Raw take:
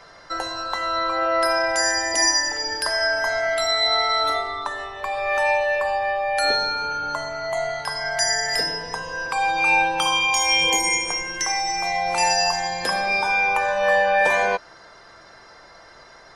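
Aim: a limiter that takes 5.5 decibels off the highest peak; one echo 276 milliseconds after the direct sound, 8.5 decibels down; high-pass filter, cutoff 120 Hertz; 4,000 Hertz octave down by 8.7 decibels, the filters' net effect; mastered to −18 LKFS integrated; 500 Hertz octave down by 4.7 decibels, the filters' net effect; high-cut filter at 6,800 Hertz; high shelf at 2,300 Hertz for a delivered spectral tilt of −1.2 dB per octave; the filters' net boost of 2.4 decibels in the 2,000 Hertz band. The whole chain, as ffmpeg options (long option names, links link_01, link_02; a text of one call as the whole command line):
ffmpeg -i in.wav -af "highpass=120,lowpass=6800,equalizer=frequency=500:width_type=o:gain=-6.5,equalizer=frequency=2000:width_type=o:gain=7.5,highshelf=frequency=2300:gain=-4.5,equalizer=frequency=4000:width_type=o:gain=-8,alimiter=limit=-13.5dB:level=0:latency=1,aecho=1:1:276:0.376,volume=4dB" out.wav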